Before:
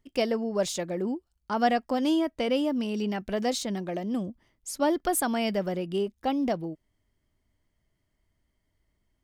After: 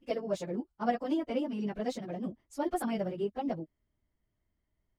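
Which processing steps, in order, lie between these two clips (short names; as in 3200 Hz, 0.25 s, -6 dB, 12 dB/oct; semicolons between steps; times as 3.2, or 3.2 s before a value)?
high shelf 3000 Hz -11 dB; plain phase-vocoder stretch 0.54×; gain -2 dB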